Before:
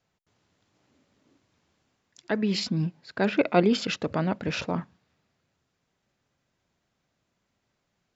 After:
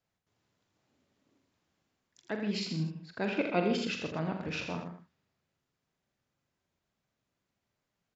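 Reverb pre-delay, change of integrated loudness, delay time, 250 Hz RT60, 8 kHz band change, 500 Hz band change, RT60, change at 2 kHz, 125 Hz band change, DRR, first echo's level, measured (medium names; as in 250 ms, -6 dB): no reverb, -7.0 dB, 44 ms, no reverb, no reading, -7.5 dB, no reverb, -5.5 dB, -7.0 dB, no reverb, -8.5 dB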